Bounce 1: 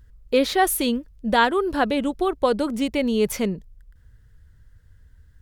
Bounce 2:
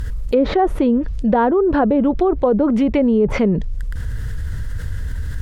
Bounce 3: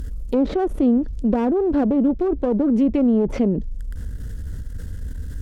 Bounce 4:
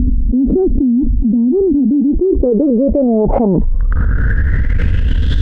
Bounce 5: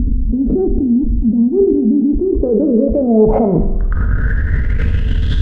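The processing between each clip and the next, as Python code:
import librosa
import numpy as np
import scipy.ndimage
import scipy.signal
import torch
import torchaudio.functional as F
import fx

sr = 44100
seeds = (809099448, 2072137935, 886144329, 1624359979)

y1 = fx.env_lowpass_down(x, sr, base_hz=710.0, full_db=-17.5)
y1 = fx.env_flatten(y1, sr, amount_pct=70)
y1 = F.gain(torch.from_numpy(y1), 3.5).numpy()
y2 = fx.diode_clip(y1, sr, knee_db=-20.0)
y2 = fx.graphic_eq_10(y2, sr, hz=(125, 250, 1000, 2000, 4000), db=(-6, 6, -7, -8, -4))
y2 = F.gain(torch.from_numpy(y2), -2.5).numpy()
y3 = fx.filter_sweep_lowpass(y2, sr, from_hz=250.0, to_hz=3500.0, start_s=1.77, end_s=5.36, q=6.2)
y3 = fx.env_flatten(y3, sr, amount_pct=100)
y3 = F.gain(torch.from_numpy(y3), -12.0).numpy()
y4 = fx.rev_fdn(y3, sr, rt60_s=1.0, lf_ratio=0.95, hf_ratio=0.9, size_ms=14.0, drr_db=5.5)
y4 = F.gain(torch.from_numpy(y4), -2.0).numpy()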